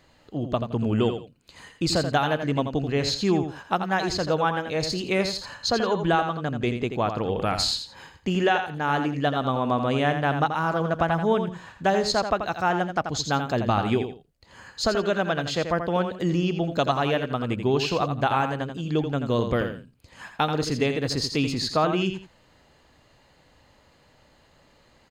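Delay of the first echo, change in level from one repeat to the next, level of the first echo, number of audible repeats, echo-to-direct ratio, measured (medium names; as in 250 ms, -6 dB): 84 ms, -12.5 dB, -8.0 dB, 2, -8.0 dB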